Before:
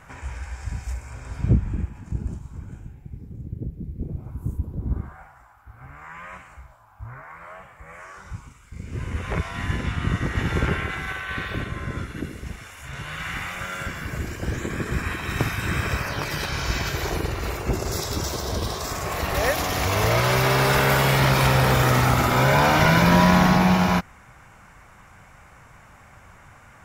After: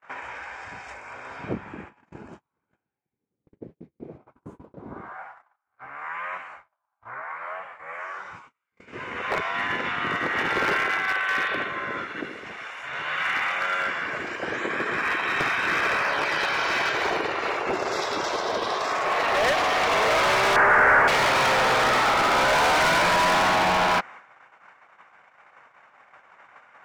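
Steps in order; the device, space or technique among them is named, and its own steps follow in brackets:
walkie-talkie (band-pass filter 520–2,900 Hz; hard clipping −26 dBFS, distortion −6 dB; noise gate −50 dBFS, range −34 dB)
0:20.56–0:21.08: high shelf with overshoot 2,500 Hz −13.5 dB, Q 3
level +7.5 dB

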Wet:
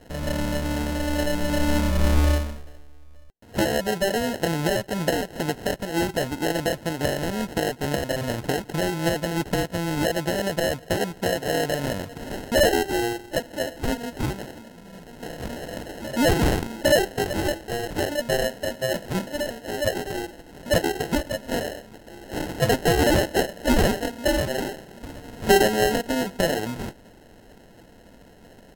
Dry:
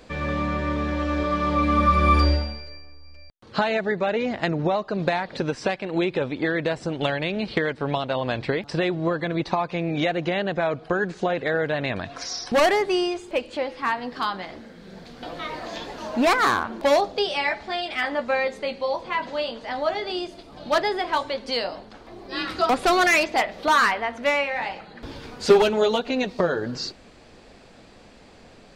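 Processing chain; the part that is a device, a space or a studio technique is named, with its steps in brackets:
notch filter 380 Hz, Q 12
crushed at another speed (tape speed factor 1.25×; decimation without filtering 30×; tape speed factor 0.8×)

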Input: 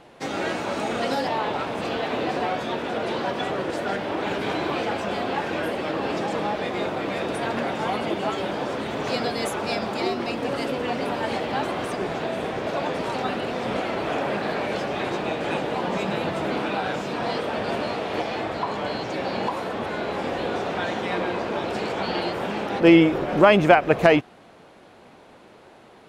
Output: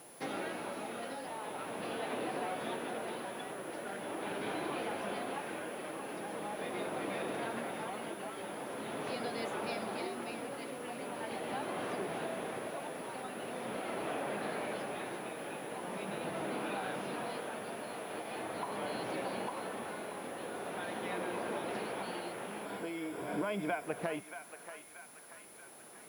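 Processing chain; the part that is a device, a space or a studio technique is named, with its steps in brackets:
medium wave at night (band-pass filter 140–4,100 Hz; downward compressor, threshold −27 dBFS, peak gain reduction 16.5 dB; amplitude tremolo 0.42 Hz, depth 48%; steady tone 10,000 Hz −49 dBFS; white noise bed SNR 22 dB)
0:22.65–0:23.84: EQ curve with evenly spaced ripples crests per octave 1.7, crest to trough 10 dB
feedback echo with a band-pass in the loop 632 ms, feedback 60%, band-pass 1,700 Hz, level −8 dB
level −7 dB

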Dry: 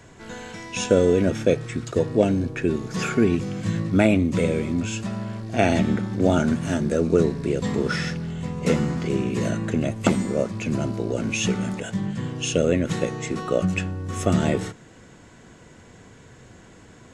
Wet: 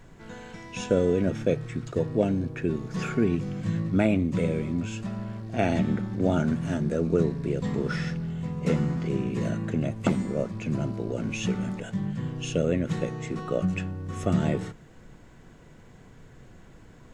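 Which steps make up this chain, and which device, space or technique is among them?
car interior (parametric band 150 Hz +5.5 dB 0.57 octaves; high-shelf EQ 4,000 Hz −7 dB; brown noise bed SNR 25 dB)
level −5.5 dB

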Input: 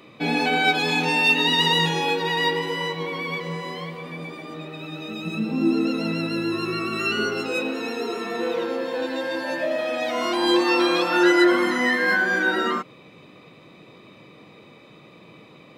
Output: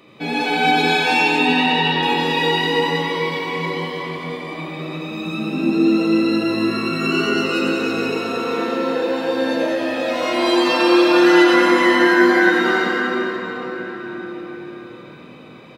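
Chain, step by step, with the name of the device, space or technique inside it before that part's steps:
0:01.19–0:02.03: high-frequency loss of the air 280 metres
cathedral (convolution reverb RT60 5.2 s, pre-delay 76 ms, DRR −4 dB)
single-tap delay 88 ms −7 dB
level −1 dB

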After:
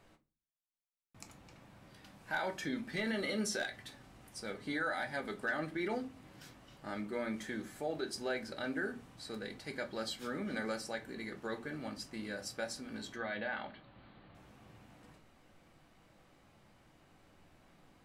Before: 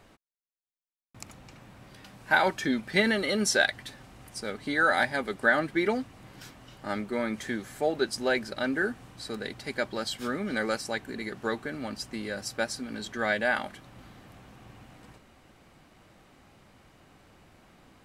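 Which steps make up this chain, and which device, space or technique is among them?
clipper into limiter (hard clipping −13.5 dBFS, distortion −26 dB; brickwall limiter −20 dBFS, peak gain reduction 6.5 dB)
0:13.16–0:14.35: Chebyshev low-pass filter 4,400 Hz, order 6
rectangular room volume 120 cubic metres, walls furnished, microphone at 0.7 metres
level −8.5 dB

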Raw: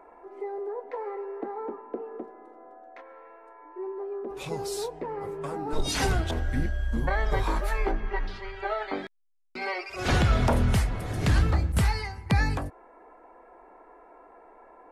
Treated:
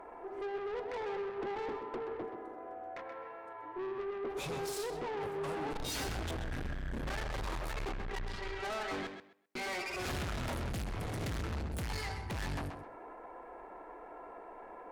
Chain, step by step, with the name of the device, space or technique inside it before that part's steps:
0:01.57–0:02.23: high-pass filter 210 Hz 24 dB per octave
rockabilly slapback (tube saturation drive 40 dB, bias 0.35; tape delay 129 ms, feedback 22%, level −6.5 dB, low-pass 4,700 Hz)
level +3.5 dB

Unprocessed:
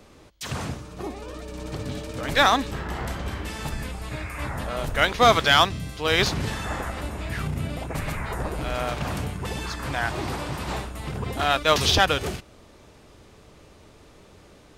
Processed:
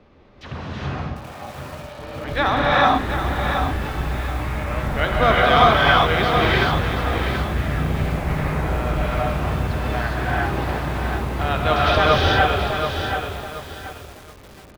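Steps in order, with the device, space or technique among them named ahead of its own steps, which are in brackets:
0:00.91–0:01.99: Butterworth high-pass 520 Hz 72 dB per octave
shout across a valley (high-frequency loss of the air 280 metres; slap from a distant wall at 180 metres, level −22 dB)
echo with shifted repeats 253 ms, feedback 64%, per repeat +69 Hz, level −18 dB
reverb whose tail is shaped and stops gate 440 ms rising, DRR −6 dB
feedback echo at a low word length 729 ms, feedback 35%, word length 6 bits, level −7 dB
level −1 dB

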